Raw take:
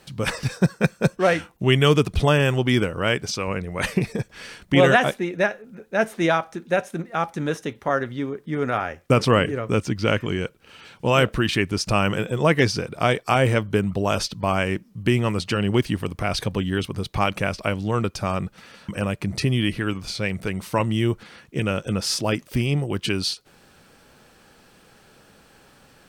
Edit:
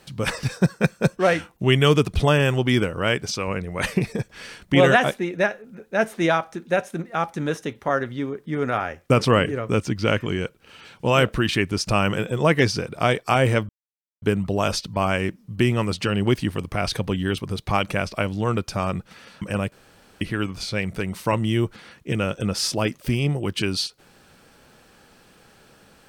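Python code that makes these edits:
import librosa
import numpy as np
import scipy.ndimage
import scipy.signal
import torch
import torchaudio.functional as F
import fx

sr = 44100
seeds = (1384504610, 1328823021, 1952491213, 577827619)

y = fx.edit(x, sr, fx.insert_silence(at_s=13.69, length_s=0.53),
    fx.room_tone_fill(start_s=19.19, length_s=0.49), tone=tone)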